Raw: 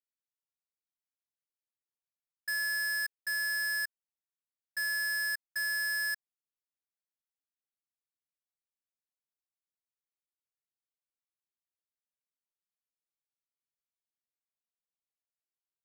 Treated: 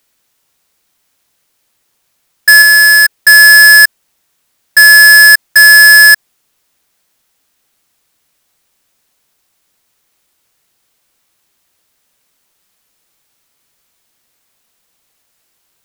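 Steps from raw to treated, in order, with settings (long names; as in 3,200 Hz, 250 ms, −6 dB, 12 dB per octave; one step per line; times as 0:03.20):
0:02.62–0:03.18: notch filter 1,500 Hz, Q 15
boost into a limiter +35 dB
level −1 dB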